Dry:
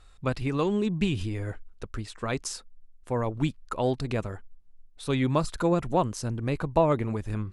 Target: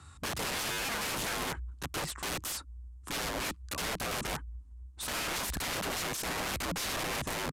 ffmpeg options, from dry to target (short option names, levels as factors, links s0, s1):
-af "equalizer=f=125:t=o:w=1:g=4,equalizer=f=250:t=o:w=1:g=11,equalizer=f=500:t=o:w=1:g=-9,equalizer=f=1000:t=o:w=1:g=12,equalizer=f=8000:t=o:w=1:g=10,afreqshift=51,alimiter=limit=0.126:level=0:latency=1:release=53,aeval=exprs='(mod(29.9*val(0)+1,2)-1)/29.9':c=same,aresample=32000,aresample=44100"